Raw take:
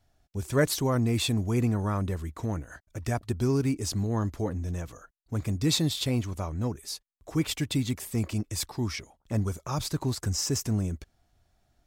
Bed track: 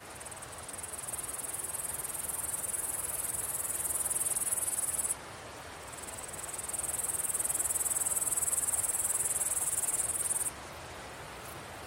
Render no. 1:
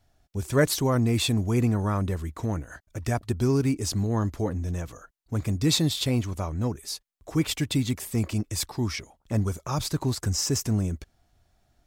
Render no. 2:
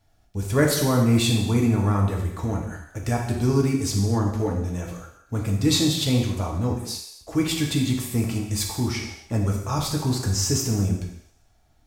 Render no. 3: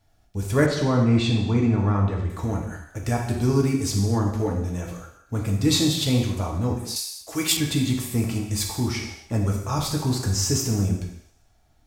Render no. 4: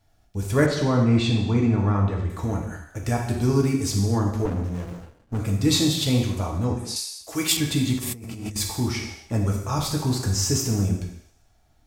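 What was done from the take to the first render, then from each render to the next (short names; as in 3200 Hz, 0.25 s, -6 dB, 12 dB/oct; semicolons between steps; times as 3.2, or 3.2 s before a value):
gain +2.5 dB
thinning echo 78 ms, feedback 66%, high-pass 420 Hz, level -17.5 dB; non-linear reverb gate 0.3 s falling, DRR -0.5 dB
0.66–2.3 air absorption 140 m; 6.96–7.57 tilt +3 dB/oct
4.45–5.4 running maximum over 33 samples; 6.65–7.24 LPF 11000 Hz 24 dB/oct; 7.98–8.56 negative-ratio compressor -34 dBFS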